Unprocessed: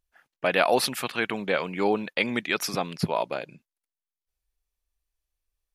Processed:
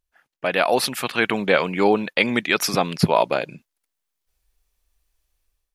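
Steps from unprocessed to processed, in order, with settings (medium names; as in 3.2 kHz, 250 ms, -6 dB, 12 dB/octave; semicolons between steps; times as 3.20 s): level rider gain up to 12 dB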